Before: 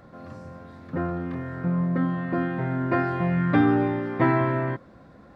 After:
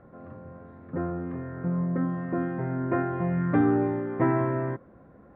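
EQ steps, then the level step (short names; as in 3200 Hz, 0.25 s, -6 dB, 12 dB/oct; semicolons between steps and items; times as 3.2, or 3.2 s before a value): LPF 2200 Hz 12 dB/oct; air absorption 350 m; bell 420 Hz +4 dB 0.65 oct; -3.0 dB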